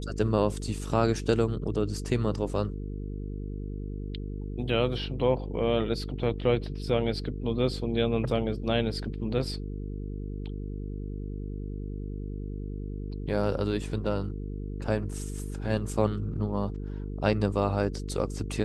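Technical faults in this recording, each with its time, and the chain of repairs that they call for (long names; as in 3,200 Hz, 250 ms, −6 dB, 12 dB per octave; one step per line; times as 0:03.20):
mains buzz 50 Hz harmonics 9 −35 dBFS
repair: hum removal 50 Hz, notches 9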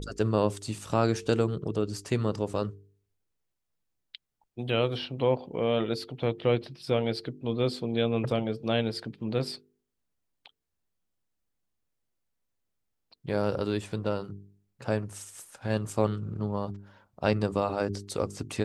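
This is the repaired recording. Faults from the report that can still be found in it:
none of them is left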